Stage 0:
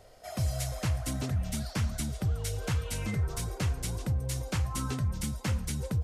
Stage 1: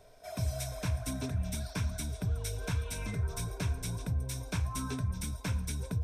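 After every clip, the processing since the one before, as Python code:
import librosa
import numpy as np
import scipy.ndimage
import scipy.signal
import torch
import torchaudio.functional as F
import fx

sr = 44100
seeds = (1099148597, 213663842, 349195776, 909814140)

y = fx.ripple_eq(x, sr, per_octave=1.6, db=9)
y = y * 10.0 ** (-4.0 / 20.0)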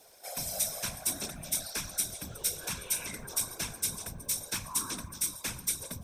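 y = fx.riaa(x, sr, side='recording')
y = fx.whisperise(y, sr, seeds[0])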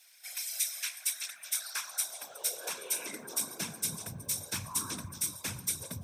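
y = fx.filter_sweep_highpass(x, sr, from_hz=2100.0, to_hz=100.0, start_s=1.2, end_s=4.28, q=1.9)
y = y * 10.0 ** (-1.5 / 20.0)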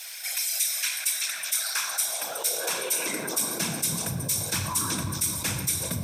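y = fx.room_shoebox(x, sr, seeds[1], volume_m3=840.0, walls='mixed', distance_m=0.68)
y = fx.env_flatten(y, sr, amount_pct=50)
y = y * 10.0 ** (4.0 / 20.0)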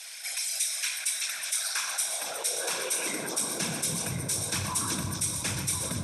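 y = fx.brickwall_lowpass(x, sr, high_hz=12000.0)
y = y + 10.0 ** (-9.0 / 20.0) * np.pad(y, (int(1046 * sr / 1000.0), 0))[:len(y)]
y = y * 10.0 ** (-2.5 / 20.0)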